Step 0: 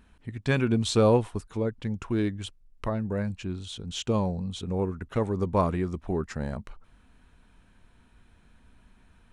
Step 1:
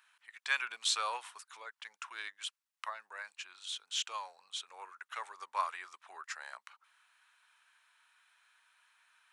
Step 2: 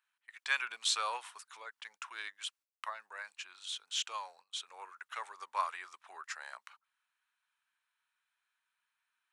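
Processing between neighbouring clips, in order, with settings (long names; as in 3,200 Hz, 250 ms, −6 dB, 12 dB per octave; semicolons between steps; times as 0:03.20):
high-pass filter 1,100 Hz 24 dB per octave
noise gate −59 dBFS, range −16 dB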